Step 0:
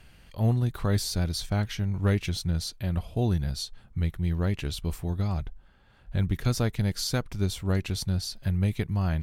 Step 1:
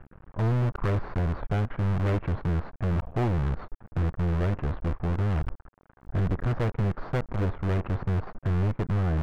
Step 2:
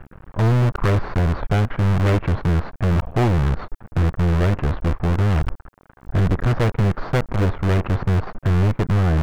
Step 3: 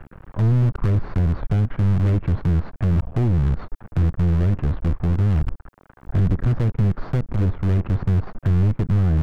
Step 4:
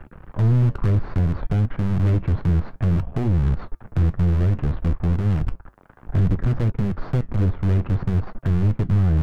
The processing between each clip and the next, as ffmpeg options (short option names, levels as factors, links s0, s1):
-af "acrusher=bits=6:dc=4:mix=0:aa=0.000001,lowpass=f=1400:w=0.5412,lowpass=f=1400:w=1.3066,asoftclip=type=hard:threshold=0.0299,volume=2.51"
-af "highshelf=f=3100:g=7.5,volume=2.51"
-filter_complex "[0:a]acrossover=split=320[s0][s1];[s1]acompressor=threshold=0.0126:ratio=3[s2];[s0][s2]amix=inputs=2:normalize=0"
-af "flanger=delay=3.2:depth=7.4:regen=-73:speed=0.6:shape=triangular,volume=1.58"